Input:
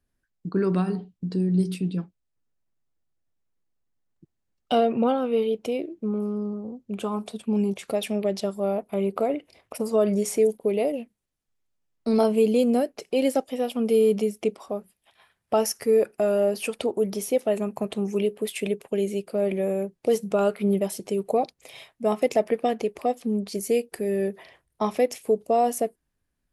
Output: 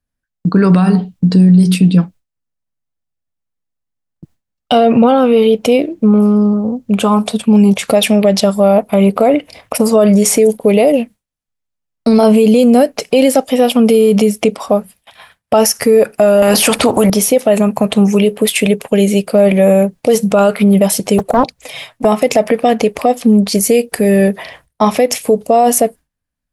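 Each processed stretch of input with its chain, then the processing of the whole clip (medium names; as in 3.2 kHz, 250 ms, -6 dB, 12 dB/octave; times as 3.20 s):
16.42–17.10 s: peaking EQ 320 Hz +11.5 dB 2.6 oct + spectrum-flattening compressor 2:1
21.18–22.05 s: touch-sensitive flanger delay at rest 11 ms, full sweep at -20 dBFS + loudspeaker Doppler distortion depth 0.73 ms
whole clip: gate with hold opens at -52 dBFS; peaking EQ 370 Hz -12 dB 0.28 oct; loudness maximiser +20.5 dB; trim -1 dB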